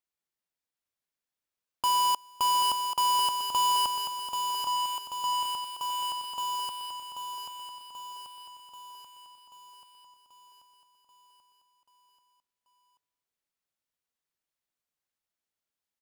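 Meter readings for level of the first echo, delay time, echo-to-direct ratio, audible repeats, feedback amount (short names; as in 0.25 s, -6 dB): -6.0 dB, 0.785 s, -4.0 dB, 7, 59%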